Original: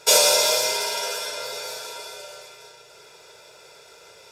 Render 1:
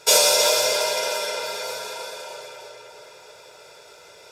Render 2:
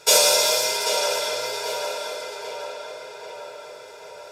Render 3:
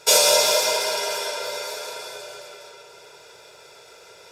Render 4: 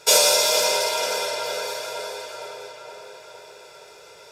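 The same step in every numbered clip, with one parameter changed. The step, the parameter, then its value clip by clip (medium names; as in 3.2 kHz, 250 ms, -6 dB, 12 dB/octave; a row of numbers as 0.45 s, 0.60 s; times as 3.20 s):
tape echo, time: 315 ms, 788 ms, 195 ms, 466 ms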